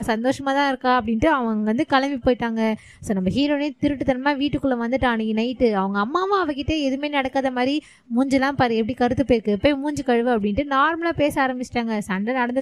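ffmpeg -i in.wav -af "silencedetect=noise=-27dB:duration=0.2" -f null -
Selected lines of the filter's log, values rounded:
silence_start: 2.75
silence_end: 3.05 | silence_duration: 0.30
silence_start: 7.79
silence_end: 8.11 | silence_duration: 0.32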